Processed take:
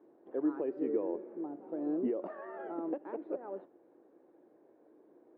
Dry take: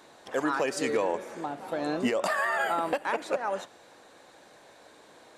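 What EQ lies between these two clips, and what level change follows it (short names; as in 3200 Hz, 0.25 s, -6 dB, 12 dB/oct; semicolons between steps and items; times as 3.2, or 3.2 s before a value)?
band-pass 340 Hz, Q 3.8; air absorption 450 m; +3.0 dB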